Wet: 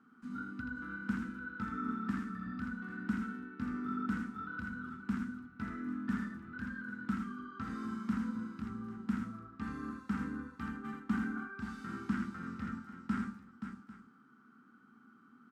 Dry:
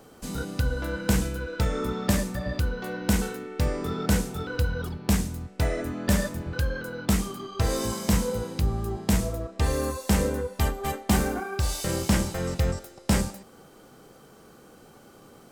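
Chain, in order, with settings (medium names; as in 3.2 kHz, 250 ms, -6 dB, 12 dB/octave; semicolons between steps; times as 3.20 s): two resonant band-passes 570 Hz, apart 2.5 oct; multi-tap echo 81/527/796 ms -5.5/-8.5/-17 dB; trim -2 dB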